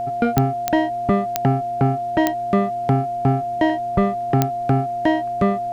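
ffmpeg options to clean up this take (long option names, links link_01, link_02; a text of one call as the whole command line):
ffmpeg -i in.wav -af "adeclick=threshold=4,bandreject=frequency=121.1:width_type=h:width=4,bandreject=frequency=242.2:width_type=h:width=4,bandreject=frequency=363.3:width_type=h:width=4,bandreject=frequency=700:width=30,agate=range=-21dB:threshold=-17dB" out.wav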